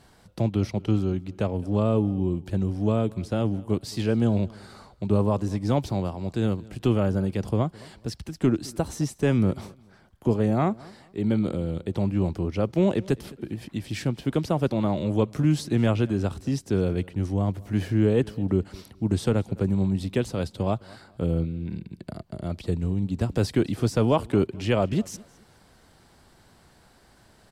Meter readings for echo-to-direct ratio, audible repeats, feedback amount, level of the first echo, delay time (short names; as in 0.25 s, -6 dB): -22.5 dB, 2, 28%, -23.0 dB, 0.213 s